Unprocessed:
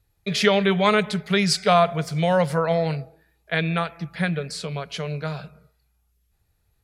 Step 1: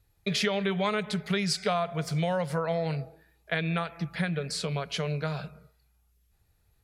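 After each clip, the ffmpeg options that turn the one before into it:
-af "acompressor=threshold=0.0501:ratio=4"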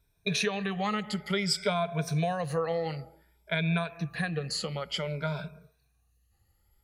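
-af "afftfilt=real='re*pow(10,14/40*sin(2*PI*(1.6*log(max(b,1)*sr/1024/100)/log(2)-(0.55)*(pts-256)/sr)))':imag='im*pow(10,14/40*sin(2*PI*(1.6*log(max(b,1)*sr/1024/100)/log(2)-(0.55)*(pts-256)/sr)))':win_size=1024:overlap=0.75,volume=0.708"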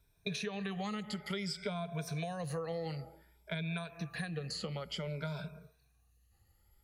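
-filter_complex "[0:a]acrossover=split=410|4500[s0][s1][s2];[s0]acompressor=threshold=0.0112:ratio=4[s3];[s1]acompressor=threshold=0.00708:ratio=4[s4];[s2]acompressor=threshold=0.00355:ratio=4[s5];[s3][s4][s5]amix=inputs=3:normalize=0"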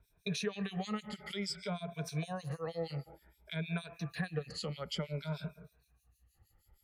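-filter_complex "[0:a]acrossover=split=2400[s0][s1];[s0]aeval=exprs='val(0)*(1-1/2+1/2*cos(2*PI*6.4*n/s))':c=same[s2];[s1]aeval=exprs='val(0)*(1-1/2-1/2*cos(2*PI*6.4*n/s))':c=same[s3];[s2][s3]amix=inputs=2:normalize=0,volume=1.68"

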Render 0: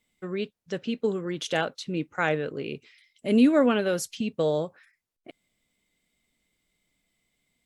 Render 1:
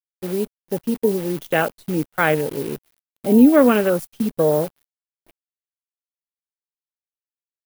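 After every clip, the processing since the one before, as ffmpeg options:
-af "afwtdn=0.0251,acrusher=bits=8:dc=4:mix=0:aa=0.000001,aexciter=amount=3.4:drive=3.7:freq=9500,volume=2.37"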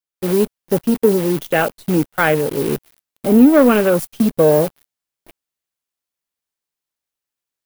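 -filter_complex "[0:a]dynaudnorm=f=150:g=3:m=2.24,asplit=2[s0][s1];[s1]volume=10.6,asoftclip=hard,volume=0.0944,volume=0.631[s2];[s0][s2]amix=inputs=2:normalize=0,volume=0.891"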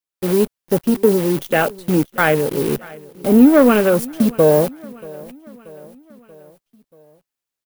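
-af "aecho=1:1:633|1266|1899|2532:0.0794|0.0445|0.0249|0.0139"

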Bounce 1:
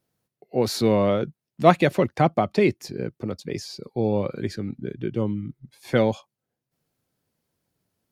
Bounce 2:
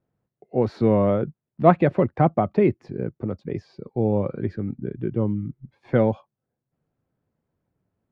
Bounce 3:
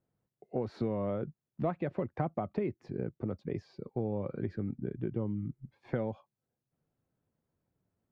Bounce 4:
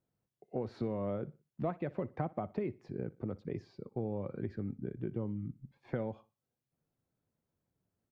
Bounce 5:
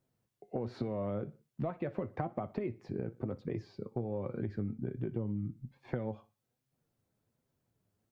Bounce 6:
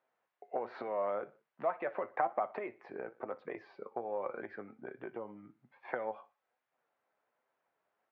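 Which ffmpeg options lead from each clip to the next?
-af "lowpass=1500,lowshelf=f=160:g=5"
-af "acompressor=threshold=0.0631:ratio=6,volume=0.531"
-af "aecho=1:1:60|120|180:0.0944|0.033|0.0116,volume=0.708"
-af "flanger=delay=7.6:depth=2.2:regen=63:speed=1.2:shape=sinusoidal,acompressor=threshold=0.01:ratio=6,volume=2.66"
-af "asuperpass=centerf=1200:order=4:qfactor=0.77,volume=2.82"

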